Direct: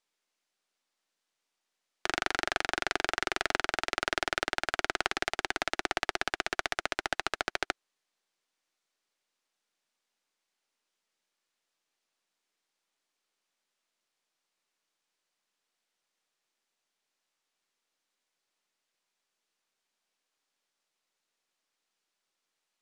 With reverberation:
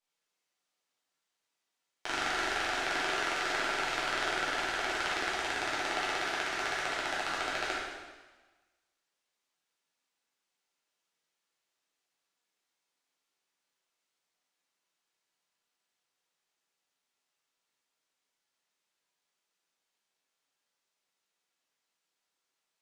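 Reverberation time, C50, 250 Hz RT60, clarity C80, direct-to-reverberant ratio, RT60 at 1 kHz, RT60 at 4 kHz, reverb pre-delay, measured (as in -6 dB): 1.3 s, -1.0 dB, 1.3 s, 2.0 dB, -8.5 dB, 1.3 s, 1.2 s, 4 ms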